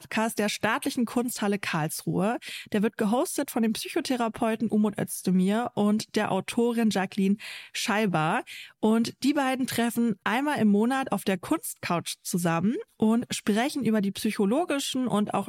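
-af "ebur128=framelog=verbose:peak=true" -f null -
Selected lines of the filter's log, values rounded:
Integrated loudness:
  I:         -26.7 LUFS
  Threshold: -36.7 LUFS
Loudness range:
  LRA:         1.8 LU
  Threshold: -46.7 LUFS
  LRA low:   -27.7 LUFS
  LRA high:  -25.9 LUFS
True peak:
  Peak:      -10.1 dBFS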